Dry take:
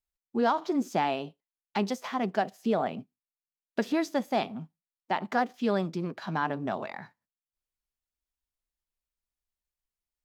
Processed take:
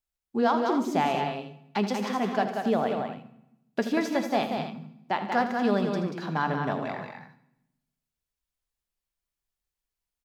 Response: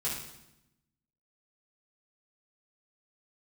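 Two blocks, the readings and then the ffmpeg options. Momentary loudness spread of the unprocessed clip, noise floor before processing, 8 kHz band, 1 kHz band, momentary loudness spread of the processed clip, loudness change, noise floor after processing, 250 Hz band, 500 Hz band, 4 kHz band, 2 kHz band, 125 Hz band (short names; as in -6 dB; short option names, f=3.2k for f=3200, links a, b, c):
9 LU, under -85 dBFS, +2.5 dB, +3.0 dB, 11 LU, +2.5 dB, under -85 dBFS, +3.0 dB, +2.5 dB, +3.0 dB, +3.0 dB, +3.5 dB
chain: -filter_complex "[0:a]aecho=1:1:79|144|186|235|268:0.251|0.133|0.531|0.112|0.266,asplit=2[a][b];[1:a]atrim=start_sample=2205[c];[b][c]afir=irnorm=-1:irlink=0,volume=-14.5dB[d];[a][d]amix=inputs=2:normalize=0"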